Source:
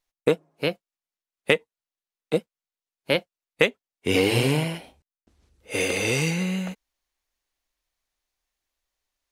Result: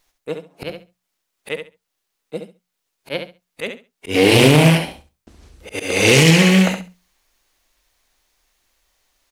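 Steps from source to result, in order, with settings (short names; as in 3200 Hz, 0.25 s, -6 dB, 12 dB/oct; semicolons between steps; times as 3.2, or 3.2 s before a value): auto swell 0.469 s; notches 60/120/180 Hz; on a send: feedback echo 68 ms, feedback 18%, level -7.5 dB; on the sum: maximiser +16.5 dB; Doppler distortion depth 0.26 ms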